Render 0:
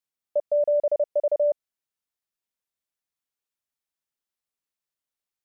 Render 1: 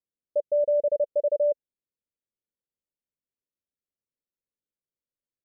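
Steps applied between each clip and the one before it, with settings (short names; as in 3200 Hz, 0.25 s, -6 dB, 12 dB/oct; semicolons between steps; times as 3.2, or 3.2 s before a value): elliptic low-pass 570 Hz; gain +1.5 dB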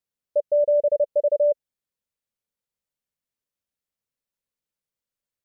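bell 330 Hz -7 dB 0.63 oct; gain +4.5 dB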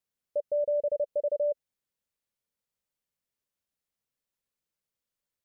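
limiter -23 dBFS, peak gain reduction 8.5 dB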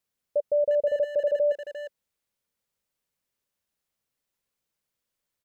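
speakerphone echo 0.35 s, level -7 dB; gain +4.5 dB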